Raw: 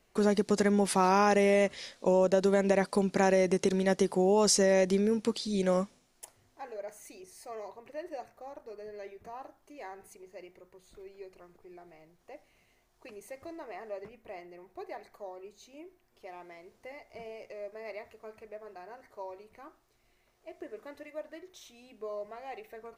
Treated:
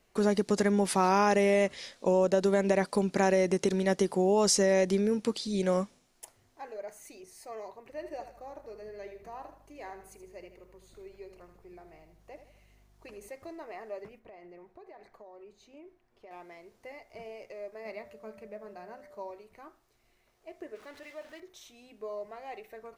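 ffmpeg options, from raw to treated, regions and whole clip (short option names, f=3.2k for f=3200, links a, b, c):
-filter_complex "[0:a]asettb=1/sr,asplit=3[a][b][c];[a]atrim=end=7.904[d];[b]atrim=start=7.9:end=13.29,asetpts=PTS-STARTPTS,afade=t=in:d=0.004:c=qsin,afade=t=out:st=5.386:d=0.004:c=qsin,aeval=exprs='val(0)+0.000708*(sin(2*PI*50*n/s)+sin(2*PI*2*50*n/s)/2+sin(2*PI*3*50*n/s)/3+sin(2*PI*4*50*n/s)/4+sin(2*PI*5*50*n/s)/5)':c=same,aecho=1:1:78|156|234|312:0.299|0.122|0.0502|0.0206,atrim=end_sample=237699[e];[c]atrim=start=13.286[f];[d][e]acrossfade=d=0.004:c1=hsin:c2=qsin[g];[g][f]acrossfade=d=0.004:c1=qsin:c2=hsin,asettb=1/sr,asplit=3[h][i][j];[h]atrim=end=14.194[k];[i]atrim=start=14.19:end=16.31,asetpts=PTS-STARTPTS,afade=t=in:d=0.004:c=qsin,afade=t=out:st=2.116:d=0.004:c=qsin,lowpass=f=2.5k:p=1,acompressor=threshold=-46dB:ratio=12:attack=3.2:release=140:knee=1:detection=peak[l];[j]atrim=start=16.306[m];[k][l]acrossfade=d=0.004:c1=hsin:c2=qsin[n];[n][m]acrossfade=d=0.004:c1=qsin:c2=hsin,asettb=1/sr,asplit=3[o][p][q];[o]atrim=end=17.854[r];[p]atrim=start=17.85:end=19.31,asetpts=PTS-STARTPTS,afade=t=in:d=0.004:c=qsin,afade=t=out:st=1.456:d=0.004:c=qsin,equalizer=f=200:w=2.7:g=11,aeval=exprs='val(0)+0.00251*sin(2*PI*590*n/s)':c=same[s];[q]atrim=start=19.306[t];[r][s]acrossfade=d=0.004:c1=hsin:c2=qsin[u];[u][t]acrossfade=d=0.004:c1=qsin:c2=hsin,asettb=1/sr,asplit=3[v][w][x];[v]atrim=end=20.754[y];[w]atrim=start=20.75:end=21.4,asetpts=PTS-STARTPTS,afade=t=in:d=0.004:c=qsin,afade=t=out:st=0.646:d=0.004:c=qsin,aeval=exprs='val(0)+0.5*0.00422*sgn(val(0))':c=same,lowpass=f=2.1k:p=1,tiltshelf=f=1.4k:g=-7[z];[x]atrim=start=21.396[aa];[y][z]acrossfade=d=0.004:c1=hsin:c2=qsin[ab];[ab][aa]acrossfade=d=0.004:c1=qsin:c2=hsin"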